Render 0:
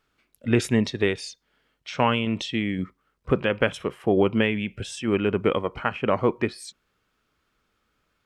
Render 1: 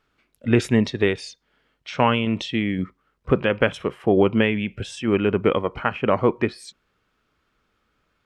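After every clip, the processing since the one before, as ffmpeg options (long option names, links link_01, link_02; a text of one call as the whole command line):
ffmpeg -i in.wav -af "highshelf=frequency=6300:gain=-9,volume=3dB" out.wav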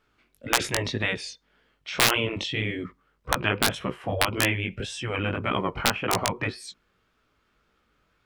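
ffmpeg -i in.wav -af "aeval=exprs='(mod(1.78*val(0)+1,2)-1)/1.78':channel_layout=same,flanger=delay=15.5:depth=6.4:speed=1.8,afftfilt=real='re*lt(hypot(re,im),0.282)':imag='im*lt(hypot(re,im),0.282)':win_size=1024:overlap=0.75,volume=3.5dB" out.wav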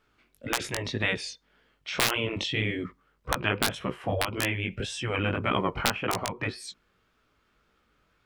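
ffmpeg -i in.wav -af "alimiter=limit=-9dB:level=0:latency=1:release=340" out.wav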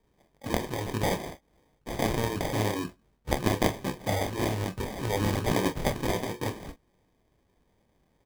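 ffmpeg -i in.wav -af "acrusher=samples=32:mix=1:aa=0.000001,aecho=1:1:28|42:0.282|0.188" out.wav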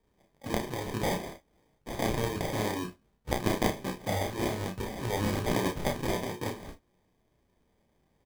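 ffmpeg -i in.wav -filter_complex "[0:a]asplit=2[link_01][link_02];[link_02]adelay=33,volume=-6dB[link_03];[link_01][link_03]amix=inputs=2:normalize=0,volume=-3dB" out.wav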